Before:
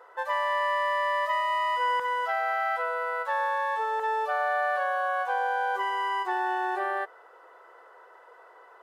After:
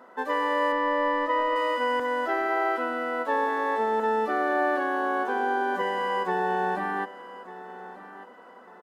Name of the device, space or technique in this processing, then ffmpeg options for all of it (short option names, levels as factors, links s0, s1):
octave pedal: -filter_complex "[0:a]asettb=1/sr,asplit=3[s0][s1][s2];[s0]atrim=end=0.724[s3];[s1]atrim=start=0.72:end=1.56,asetpts=PTS-STARTPTS,afade=t=in:d=0.004:c=qsin,afade=t=out:st=0.836:d=0.004:c=qsin,aemphasis=mode=reproduction:type=bsi[s4];[s2]atrim=start=1.556[s5];[s3][s4]acrossfade=d=0.004:c1=hsin:c2=qsin[s6];[s6][s5]acrossfade=d=0.004:c1=qsin:c2=hsin,asplit=2[s7][s8];[s8]asetrate=22050,aresample=44100,atempo=2,volume=0.708[s9];[s7][s9]amix=inputs=2:normalize=0,aecho=1:1:1194|2388|3582:0.158|0.0444|0.0124"